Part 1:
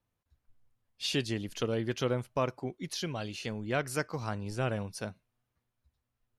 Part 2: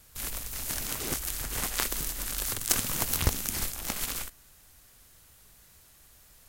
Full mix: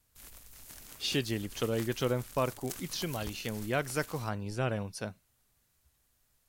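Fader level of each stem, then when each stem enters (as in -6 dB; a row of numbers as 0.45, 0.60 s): 0.0, -16.5 dB; 0.00, 0.00 s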